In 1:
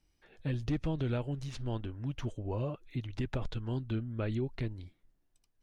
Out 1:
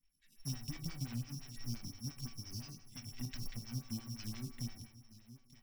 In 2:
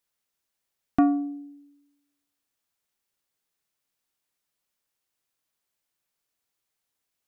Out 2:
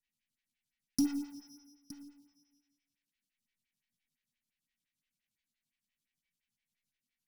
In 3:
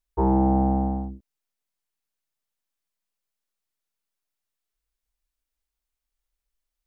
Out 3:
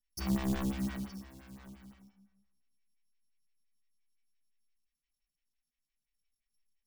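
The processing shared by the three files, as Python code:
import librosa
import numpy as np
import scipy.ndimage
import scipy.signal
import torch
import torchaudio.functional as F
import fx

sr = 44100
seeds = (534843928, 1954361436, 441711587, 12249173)

y = (np.kron(x[::8], np.eye(8)[0]) * 8)[:len(x)]
y = fx.env_lowpass_down(y, sr, base_hz=850.0, full_db=-12.5)
y = fx.lowpass(y, sr, hz=1400.0, slope=6)
y = y + 10.0 ** (-16.0 / 20.0) * np.pad(y, (int(917 * sr / 1000.0), 0))[:len(y)]
y = fx.dynamic_eq(y, sr, hz=710.0, q=0.75, threshold_db=-38.0, ratio=4.0, max_db=7)
y = scipy.signal.sosfilt(scipy.signal.cheby2(4, 50, [430.0, 1100.0], 'bandstop', fs=sr, output='sos'), y)
y = fx.quant_float(y, sr, bits=2)
y = fx.low_shelf(y, sr, hz=130.0, db=-6.0)
y = fx.comb_fb(y, sr, f0_hz=380.0, decay_s=0.44, harmonics='all', damping=0.0, mix_pct=80)
y = fx.rev_plate(y, sr, seeds[0], rt60_s=1.3, hf_ratio=0.8, predelay_ms=0, drr_db=8.0)
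y = fx.stagger_phaser(y, sr, hz=5.8)
y = y * 10.0 ** (12.5 / 20.0)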